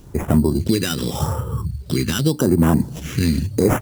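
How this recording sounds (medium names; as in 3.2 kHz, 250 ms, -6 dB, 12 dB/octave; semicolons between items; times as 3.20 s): aliases and images of a low sample rate 4.4 kHz, jitter 0%; phasing stages 2, 0.85 Hz, lowest notch 650–4100 Hz; a quantiser's noise floor 10-bit, dither none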